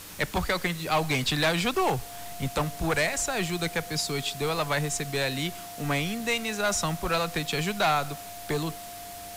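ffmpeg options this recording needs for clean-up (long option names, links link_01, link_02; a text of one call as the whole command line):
ffmpeg -i in.wav -af "adeclick=threshold=4,bandreject=frequency=98.8:width_type=h:width=4,bandreject=frequency=197.6:width_type=h:width=4,bandreject=frequency=296.4:width_type=h:width=4,bandreject=frequency=700:width=30,afwtdn=0.0071" out.wav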